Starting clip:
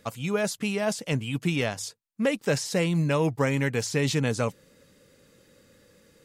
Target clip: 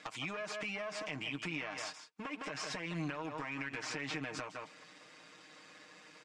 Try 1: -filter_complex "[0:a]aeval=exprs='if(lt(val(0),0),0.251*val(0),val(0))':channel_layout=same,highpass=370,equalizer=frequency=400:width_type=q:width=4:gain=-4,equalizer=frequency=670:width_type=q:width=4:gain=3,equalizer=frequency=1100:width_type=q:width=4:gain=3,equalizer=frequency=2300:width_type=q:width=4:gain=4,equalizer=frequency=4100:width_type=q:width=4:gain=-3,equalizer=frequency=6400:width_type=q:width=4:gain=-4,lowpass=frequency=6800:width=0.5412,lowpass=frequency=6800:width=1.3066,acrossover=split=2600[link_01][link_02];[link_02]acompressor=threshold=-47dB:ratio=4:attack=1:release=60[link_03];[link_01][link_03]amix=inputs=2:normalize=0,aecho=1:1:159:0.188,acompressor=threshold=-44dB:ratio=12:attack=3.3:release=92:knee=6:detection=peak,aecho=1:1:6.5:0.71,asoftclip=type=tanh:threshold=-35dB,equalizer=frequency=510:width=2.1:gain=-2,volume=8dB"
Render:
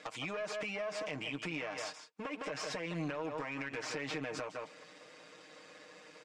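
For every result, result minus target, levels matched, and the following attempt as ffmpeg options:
soft clipping: distortion +16 dB; 500 Hz band +4.0 dB
-filter_complex "[0:a]aeval=exprs='if(lt(val(0),0),0.251*val(0),val(0))':channel_layout=same,highpass=370,equalizer=frequency=400:width_type=q:width=4:gain=-4,equalizer=frequency=670:width_type=q:width=4:gain=3,equalizer=frequency=1100:width_type=q:width=4:gain=3,equalizer=frequency=2300:width_type=q:width=4:gain=4,equalizer=frequency=4100:width_type=q:width=4:gain=-3,equalizer=frequency=6400:width_type=q:width=4:gain=-4,lowpass=frequency=6800:width=0.5412,lowpass=frequency=6800:width=1.3066,acrossover=split=2600[link_01][link_02];[link_02]acompressor=threshold=-47dB:ratio=4:attack=1:release=60[link_03];[link_01][link_03]amix=inputs=2:normalize=0,aecho=1:1:159:0.188,acompressor=threshold=-44dB:ratio=12:attack=3.3:release=92:knee=6:detection=peak,aecho=1:1:6.5:0.71,asoftclip=type=tanh:threshold=-26dB,equalizer=frequency=510:width=2.1:gain=-2,volume=8dB"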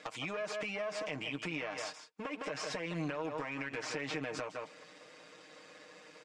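500 Hz band +4.0 dB
-filter_complex "[0:a]aeval=exprs='if(lt(val(0),0),0.251*val(0),val(0))':channel_layout=same,highpass=370,equalizer=frequency=400:width_type=q:width=4:gain=-4,equalizer=frequency=670:width_type=q:width=4:gain=3,equalizer=frequency=1100:width_type=q:width=4:gain=3,equalizer=frequency=2300:width_type=q:width=4:gain=4,equalizer=frequency=4100:width_type=q:width=4:gain=-3,equalizer=frequency=6400:width_type=q:width=4:gain=-4,lowpass=frequency=6800:width=0.5412,lowpass=frequency=6800:width=1.3066,acrossover=split=2600[link_01][link_02];[link_02]acompressor=threshold=-47dB:ratio=4:attack=1:release=60[link_03];[link_01][link_03]amix=inputs=2:normalize=0,aecho=1:1:159:0.188,acompressor=threshold=-44dB:ratio=12:attack=3.3:release=92:knee=6:detection=peak,aecho=1:1:6.5:0.71,asoftclip=type=tanh:threshold=-26dB,equalizer=frequency=510:width=2.1:gain=-10.5,volume=8dB"

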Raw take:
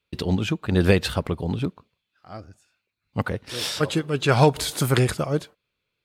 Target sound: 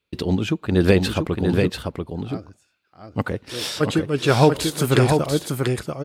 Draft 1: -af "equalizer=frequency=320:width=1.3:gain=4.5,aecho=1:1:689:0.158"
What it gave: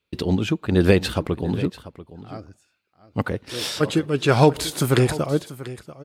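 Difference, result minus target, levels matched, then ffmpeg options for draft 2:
echo-to-direct −11.5 dB
-af "equalizer=frequency=320:width=1.3:gain=4.5,aecho=1:1:689:0.596"

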